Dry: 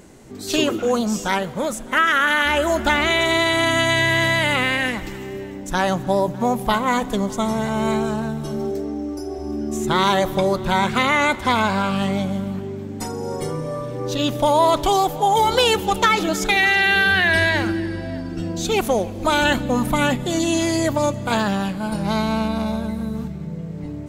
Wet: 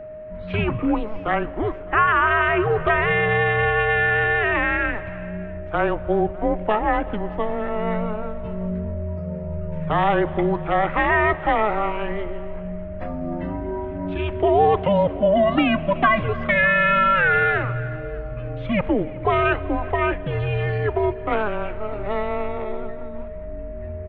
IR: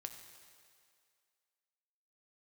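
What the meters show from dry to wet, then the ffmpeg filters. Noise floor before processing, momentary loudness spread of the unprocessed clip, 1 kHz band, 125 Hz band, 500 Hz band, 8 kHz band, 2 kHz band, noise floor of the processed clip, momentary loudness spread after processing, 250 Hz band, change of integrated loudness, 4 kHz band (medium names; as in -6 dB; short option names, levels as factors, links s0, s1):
-32 dBFS, 12 LU, -1.5 dB, +0.5 dB, 0.0 dB, under -40 dB, -1.5 dB, -33 dBFS, 14 LU, -4.0 dB, -1.5 dB, -13.0 dB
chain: -filter_complex "[0:a]acrossover=split=360[s0][s1];[s0]alimiter=level_in=1.06:limit=0.0631:level=0:latency=1,volume=0.944[s2];[s1]aecho=1:1:374:0.075[s3];[s2][s3]amix=inputs=2:normalize=0,highpass=f=160:t=q:w=0.5412,highpass=f=160:t=q:w=1.307,lowpass=f=2700:t=q:w=0.5176,lowpass=f=2700:t=q:w=0.7071,lowpass=f=2700:t=q:w=1.932,afreqshift=-210,aeval=exprs='val(0)+0.02*sin(2*PI*620*n/s)':c=same"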